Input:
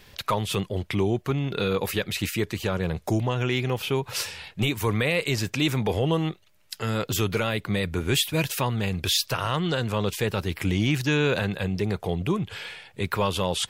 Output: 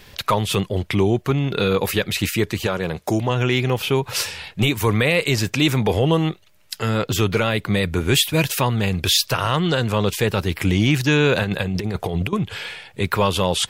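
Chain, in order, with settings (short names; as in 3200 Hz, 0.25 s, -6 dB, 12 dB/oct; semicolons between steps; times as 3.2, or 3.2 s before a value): 2.66–3.29 HPF 320 Hz -> 140 Hz 6 dB/oct; 6.87–7.54 high shelf 5400 Hz -> 10000 Hz -7 dB; 11.43–12.33 negative-ratio compressor -28 dBFS, ratio -0.5; gain +6 dB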